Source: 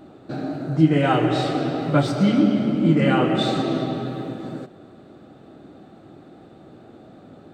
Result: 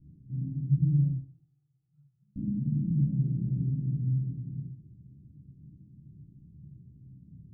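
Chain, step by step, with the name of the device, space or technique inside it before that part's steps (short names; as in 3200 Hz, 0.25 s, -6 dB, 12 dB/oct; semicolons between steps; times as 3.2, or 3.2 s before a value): 1.1–2.36 inverse Chebyshev high-pass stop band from 650 Hz, stop band 40 dB; club heard from the street (limiter -14.5 dBFS, peak gain reduction 10.5 dB; LPF 140 Hz 24 dB/oct; reverb RT60 0.55 s, pre-delay 3 ms, DRR -4.5 dB); gain -1 dB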